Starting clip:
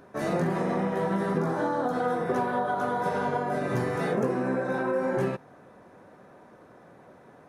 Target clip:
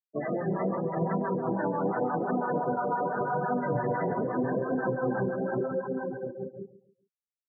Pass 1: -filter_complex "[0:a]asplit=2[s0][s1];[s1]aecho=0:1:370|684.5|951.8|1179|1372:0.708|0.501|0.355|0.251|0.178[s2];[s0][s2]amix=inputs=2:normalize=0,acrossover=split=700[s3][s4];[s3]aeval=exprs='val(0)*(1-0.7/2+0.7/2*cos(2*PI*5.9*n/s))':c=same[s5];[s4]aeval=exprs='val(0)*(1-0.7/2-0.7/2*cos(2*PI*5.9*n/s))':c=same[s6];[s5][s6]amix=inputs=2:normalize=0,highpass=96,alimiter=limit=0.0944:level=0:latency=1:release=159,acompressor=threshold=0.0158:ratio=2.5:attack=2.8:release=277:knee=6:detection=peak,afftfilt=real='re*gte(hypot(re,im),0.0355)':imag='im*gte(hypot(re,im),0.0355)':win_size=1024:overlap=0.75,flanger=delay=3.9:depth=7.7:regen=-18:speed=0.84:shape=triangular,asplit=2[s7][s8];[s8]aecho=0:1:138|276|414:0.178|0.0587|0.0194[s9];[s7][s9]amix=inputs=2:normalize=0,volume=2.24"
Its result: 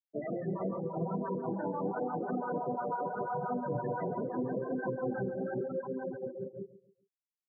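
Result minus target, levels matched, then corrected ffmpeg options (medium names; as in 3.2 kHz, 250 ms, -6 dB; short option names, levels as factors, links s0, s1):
compression: peak gain reduction +5.5 dB
-filter_complex "[0:a]asplit=2[s0][s1];[s1]aecho=0:1:370|684.5|951.8|1179|1372:0.708|0.501|0.355|0.251|0.178[s2];[s0][s2]amix=inputs=2:normalize=0,acrossover=split=700[s3][s4];[s3]aeval=exprs='val(0)*(1-0.7/2+0.7/2*cos(2*PI*5.9*n/s))':c=same[s5];[s4]aeval=exprs='val(0)*(1-0.7/2-0.7/2*cos(2*PI*5.9*n/s))':c=same[s6];[s5][s6]amix=inputs=2:normalize=0,highpass=96,alimiter=limit=0.0944:level=0:latency=1:release=159,acompressor=threshold=0.0447:ratio=2.5:attack=2.8:release=277:knee=6:detection=peak,afftfilt=real='re*gte(hypot(re,im),0.0355)':imag='im*gte(hypot(re,im),0.0355)':win_size=1024:overlap=0.75,flanger=delay=3.9:depth=7.7:regen=-18:speed=0.84:shape=triangular,asplit=2[s7][s8];[s8]aecho=0:1:138|276|414:0.178|0.0587|0.0194[s9];[s7][s9]amix=inputs=2:normalize=0,volume=2.24"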